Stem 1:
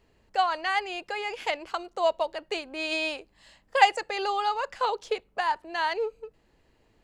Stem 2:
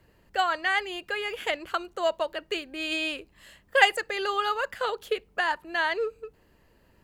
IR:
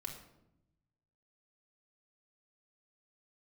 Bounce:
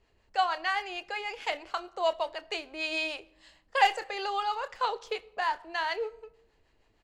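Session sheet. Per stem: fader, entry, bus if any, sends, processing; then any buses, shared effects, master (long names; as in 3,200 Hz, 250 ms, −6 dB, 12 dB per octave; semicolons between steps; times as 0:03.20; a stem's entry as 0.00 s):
−1.0 dB, 0.00 s, send −11.5 dB, parametric band 210 Hz −5.5 dB 2.5 octaves; two-band tremolo in antiphase 6.5 Hz, depth 50%, crossover 640 Hz; low-pass filter 8,000 Hz 12 dB per octave
−13.5 dB, 28 ms, send −3 dB, power curve on the samples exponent 1.4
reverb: on, RT60 0.85 s, pre-delay 3 ms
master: no processing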